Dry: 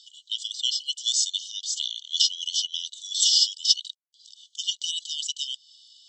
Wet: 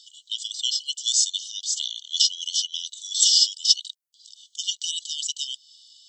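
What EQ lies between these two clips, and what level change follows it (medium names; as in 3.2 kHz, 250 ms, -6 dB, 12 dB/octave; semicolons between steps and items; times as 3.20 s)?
treble shelf 5.3 kHz +11 dB; -3.0 dB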